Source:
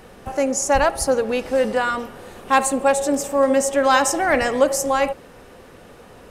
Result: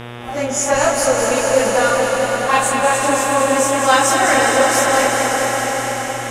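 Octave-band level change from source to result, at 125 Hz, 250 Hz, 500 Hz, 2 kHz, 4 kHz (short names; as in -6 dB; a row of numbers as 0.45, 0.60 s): +9.0, +1.5, +3.5, +7.0, +8.0 dB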